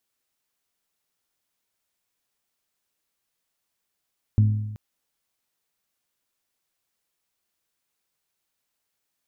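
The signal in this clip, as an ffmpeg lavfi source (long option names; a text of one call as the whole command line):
ffmpeg -f lavfi -i "aevalsrc='0.237*pow(10,-3*t/1.05)*sin(2*PI*106*t)+0.0668*pow(10,-3*t/0.853)*sin(2*PI*212*t)+0.0188*pow(10,-3*t/0.807)*sin(2*PI*254.4*t)+0.00531*pow(10,-3*t/0.755)*sin(2*PI*318*t)+0.0015*pow(10,-3*t/0.693)*sin(2*PI*424*t)':duration=0.38:sample_rate=44100" out.wav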